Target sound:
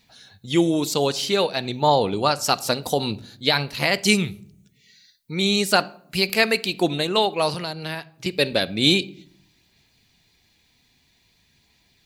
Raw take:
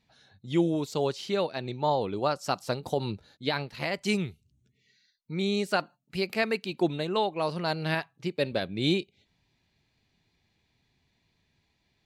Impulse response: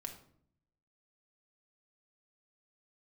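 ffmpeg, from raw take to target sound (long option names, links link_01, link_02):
-filter_complex "[0:a]crystalizer=i=4:c=0,aphaser=in_gain=1:out_gain=1:delay=4:decay=0.21:speed=0.51:type=sinusoidal,asettb=1/sr,asplit=3[link_01][link_02][link_03];[link_01]atrim=end=7.544[link_04];[link_02]atrim=start=7.54:end=8.26,asetpts=PTS-STARTPTS,afade=type=in:duration=0.004:curve=qsin,afade=type=out:start_time=0.716:duration=0.004:curve=qsin,acrossover=split=260|1300[link_05][link_06][link_07];[link_05]acompressor=threshold=-42dB:ratio=4[link_08];[link_06]acompressor=threshold=-39dB:ratio=4[link_09];[link_07]acompressor=threshold=-38dB:ratio=4[link_10];[link_08][link_09][link_10]amix=inputs=3:normalize=0[link_11];[link_03]atrim=start=8.256[link_12];[link_04][link_11]acrossfade=duration=0.004:curve1=hsin:curve2=qsin[link_13];[link_13][link_12]acrossfade=duration=0.004:curve1=qsin:curve2=hsin,asplit=2[link_14][link_15];[1:a]atrim=start_sample=2205,lowpass=5700[link_16];[link_15][link_16]afir=irnorm=-1:irlink=0,volume=-6dB[link_17];[link_14][link_17]amix=inputs=2:normalize=0,volume=3.5dB"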